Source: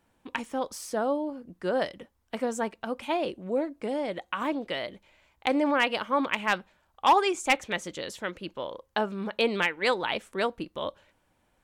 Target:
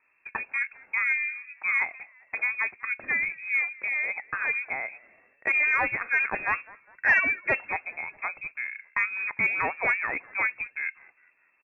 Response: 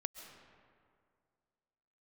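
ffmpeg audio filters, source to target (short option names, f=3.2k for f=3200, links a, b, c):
-filter_complex "[0:a]asplit=4[a][b][c][d];[b]adelay=202,afreqshift=76,volume=-24dB[e];[c]adelay=404,afreqshift=152,volume=-31.3dB[f];[d]adelay=606,afreqshift=228,volume=-38.7dB[g];[a][e][f][g]amix=inputs=4:normalize=0,aresample=11025,aeval=exprs='clip(val(0),-1,0.0891)':c=same,aresample=44100,lowpass=f=2.3k:t=q:w=0.5098,lowpass=f=2.3k:t=q:w=0.6013,lowpass=f=2.3k:t=q:w=0.9,lowpass=f=2.3k:t=q:w=2.563,afreqshift=-2700,acontrast=34,volume=-4dB"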